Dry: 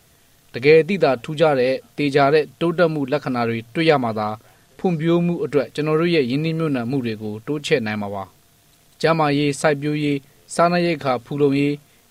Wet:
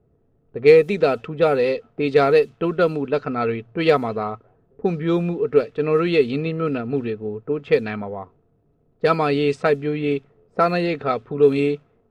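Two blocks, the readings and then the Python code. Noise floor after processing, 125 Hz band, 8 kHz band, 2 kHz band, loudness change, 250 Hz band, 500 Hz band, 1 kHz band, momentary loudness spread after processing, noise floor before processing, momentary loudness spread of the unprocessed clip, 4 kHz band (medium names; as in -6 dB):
-63 dBFS, -4.0 dB, under -15 dB, -3.0 dB, -0.5 dB, -3.0 dB, +0.5 dB, -2.0 dB, 11 LU, -55 dBFS, 10 LU, -5.5 dB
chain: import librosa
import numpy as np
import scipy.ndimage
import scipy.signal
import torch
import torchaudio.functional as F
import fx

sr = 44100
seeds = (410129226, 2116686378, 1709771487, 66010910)

y = fx.cheby_harmonics(x, sr, harmonics=(6, 8), levels_db=(-33, -32), full_scale_db=-1.5)
y = fx.env_lowpass(y, sr, base_hz=460.0, full_db=-12.0)
y = fx.small_body(y, sr, hz=(430.0, 1300.0, 2600.0), ring_ms=35, db=8)
y = F.gain(torch.from_numpy(y), -4.0).numpy()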